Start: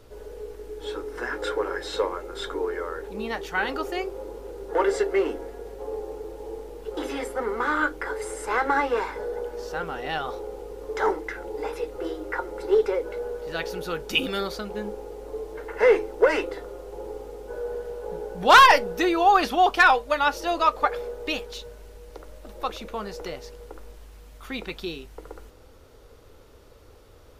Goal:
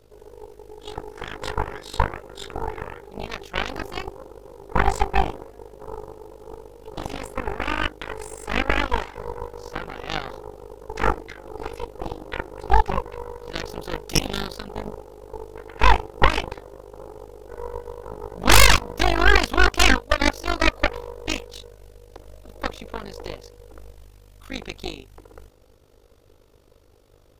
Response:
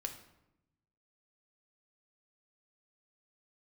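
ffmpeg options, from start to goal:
-af "tremolo=f=50:d=0.824,equalizer=f=1.5k:w=1:g=-3.5,aeval=exprs='0.447*(cos(1*acos(clip(val(0)/0.447,-1,1)))-cos(1*PI/2))+0.224*(cos(3*acos(clip(val(0)/0.447,-1,1)))-cos(3*PI/2))+0.178*(cos(6*acos(clip(val(0)/0.447,-1,1)))-cos(6*PI/2))':c=same,volume=5dB"

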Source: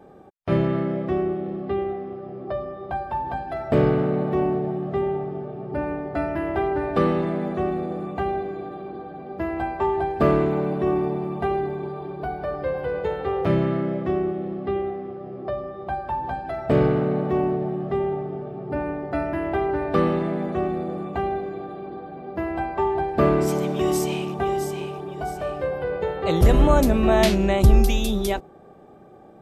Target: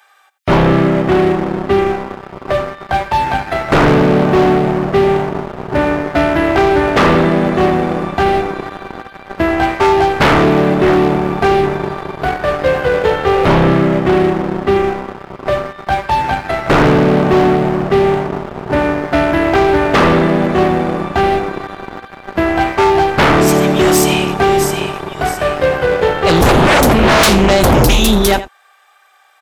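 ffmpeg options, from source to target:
-filter_complex "[0:a]acrossover=split=1400[a][b];[a]aeval=exprs='sgn(val(0))*max(abs(val(0))-0.0237,0)':c=same[c];[c][b]amix=inputs=2:normalize=0,aecho=1:1:85:0.141,aeval=exprs='0.531*sin(PI/2*5.01*val(0)/0.531)':c=same"

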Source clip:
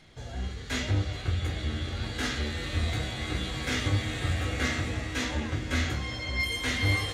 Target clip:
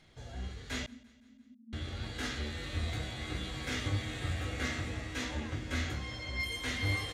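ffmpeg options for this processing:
-filter_complex "[0:a]asettb=1/sr,asplit=3[a][b][c];[a]atrim=end=0.864[d];[b]atrim=start=0.86:end=1.73,asetpts=PTS-STARTPTS,afade=t=in:d=0.004:c=qsin,afade=t=out:st=0.866:d=0.004:c=qsin,asuperpass=centerf=240:order=12:qfactor=4.4[e];[c]atrim=start=1.726[f];[d][e]acrossfade=d=0.004:c1=hsin:c2=qsin[g];[g][f]acrossfade=d=0.004:c1=qsin:c2=hsin,asplit=2[h][i];[i]aecho=0:1:171|342|513|684:0.0708|0.0418|0.0246|0.0145[j];[h][j]amix=inputs=2:normalize=0,volume=-6.5dB"

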